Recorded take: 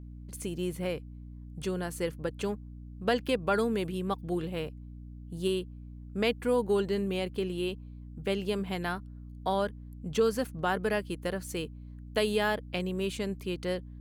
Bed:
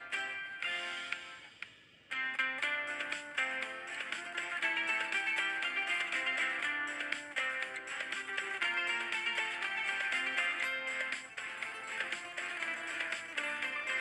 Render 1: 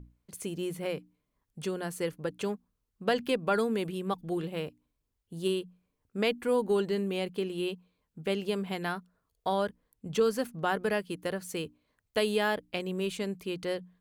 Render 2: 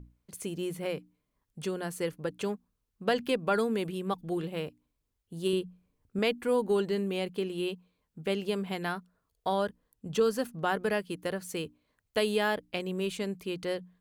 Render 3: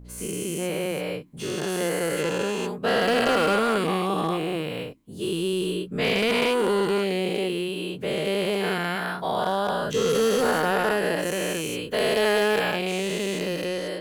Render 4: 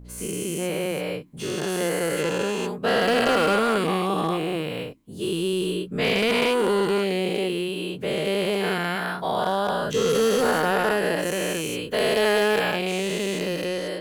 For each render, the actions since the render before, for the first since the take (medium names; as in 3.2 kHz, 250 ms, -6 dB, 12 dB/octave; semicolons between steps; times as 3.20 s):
hum notches 60/120/180/240/300 Hz
5.53–6.19 s: bass shelf 300 Hz +7 dB; 9.59–10.56 s: band-stop 2.2 kHz, Q 10
every event in the spectrogram widened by 480 ms; hard clipper -16 dBFS, distortion -20 dB
trim +1 dB